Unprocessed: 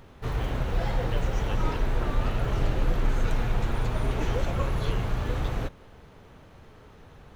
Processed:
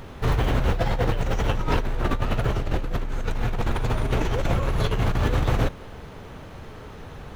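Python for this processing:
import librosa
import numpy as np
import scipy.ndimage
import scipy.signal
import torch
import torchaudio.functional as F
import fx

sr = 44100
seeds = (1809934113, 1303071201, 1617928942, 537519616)

y = fx.over_compress(x, sr, threshold_db=-29.0, ratio=-1.0)
y = y * 10.0 ** (6.5 / 20.0)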